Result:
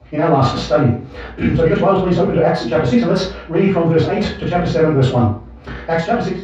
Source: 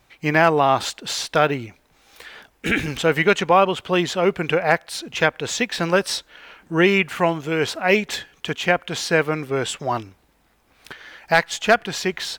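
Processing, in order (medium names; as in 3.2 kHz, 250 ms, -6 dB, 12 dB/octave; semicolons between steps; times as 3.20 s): fade out at the end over 1.14 s; RIAA curve playback; de-hum 92.69 Hz, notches 22; reverse; compression 5:1, threshold -25 dBFS, peak gain reduction 15 dB; reverse; high-pass 63 Hz 24 dB/octave; time stretch by phase-locked vocoder 0.52×; in parallel at -5 dB: saturation -31.5 dBFS, distortion -7 dB; on the sum: reverberation RT60 0.40 s, pre-delay 3 ms, DRR -7.5 dB; trim -2.5 dB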